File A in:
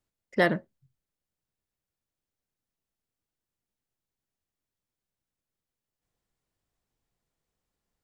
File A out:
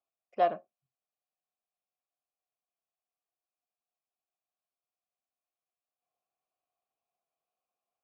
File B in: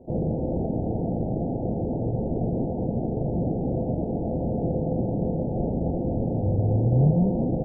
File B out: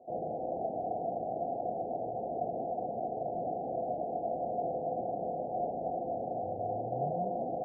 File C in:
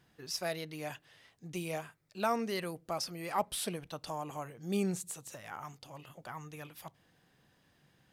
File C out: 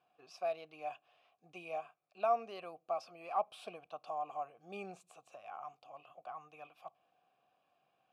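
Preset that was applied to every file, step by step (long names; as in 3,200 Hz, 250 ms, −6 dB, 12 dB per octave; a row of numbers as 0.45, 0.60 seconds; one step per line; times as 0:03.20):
formant filter a
level +6 dB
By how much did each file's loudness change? −2.5, −9.5, −3.5 LU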